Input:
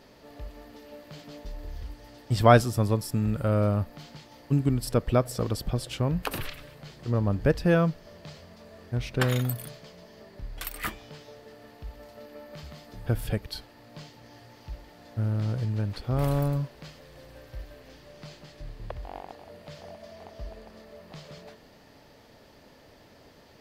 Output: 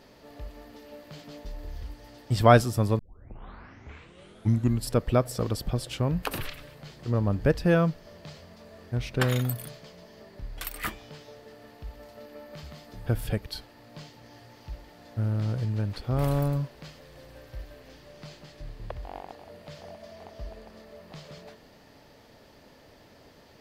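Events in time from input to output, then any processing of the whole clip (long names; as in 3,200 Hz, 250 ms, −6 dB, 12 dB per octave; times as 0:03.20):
0:02.99: tape start 1.91 s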